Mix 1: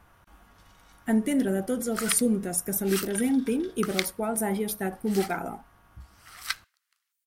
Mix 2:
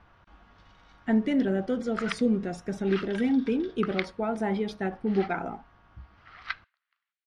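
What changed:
second sound: add low-pass 2.6 kHz 12 dB/octave; master: add low-pass 4.7 kHz 24 dB/octave

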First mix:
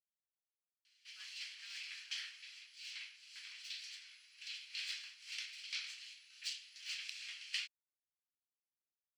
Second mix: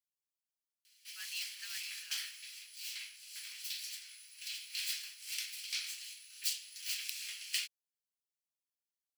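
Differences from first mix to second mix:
speech +8.5 dB; master: remove distance through air 130 m

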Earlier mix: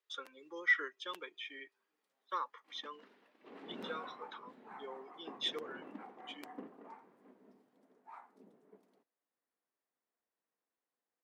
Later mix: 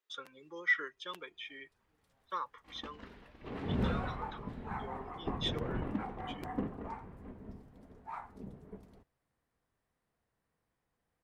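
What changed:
background +9.5 dB; master: remove high-pass 250 Hz 24 dB/octave

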